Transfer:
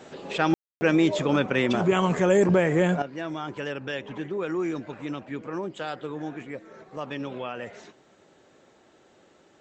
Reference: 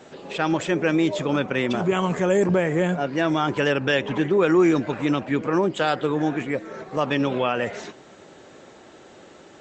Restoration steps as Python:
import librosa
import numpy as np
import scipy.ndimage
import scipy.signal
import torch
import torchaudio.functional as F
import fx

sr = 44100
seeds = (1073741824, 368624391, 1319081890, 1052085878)

y = fx.fix_ambience(x, sr, seeds[0], print_start_s=8.65, print_end_s=9.15, start_s=0.54, end_s=0.81)
y = fx.fix_level(y, sr, at_s=3.02, step_db=11.0)